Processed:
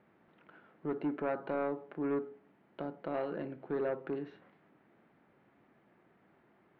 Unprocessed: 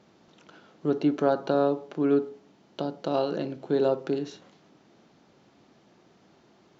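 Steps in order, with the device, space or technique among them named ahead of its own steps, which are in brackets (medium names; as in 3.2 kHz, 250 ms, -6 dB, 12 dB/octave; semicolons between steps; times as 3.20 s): overdriven synthesiser ladder filter (saturation -19 dBFS, distortion -14 dB; four-pole ladder low-pass 2.4 kHz, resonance 40%)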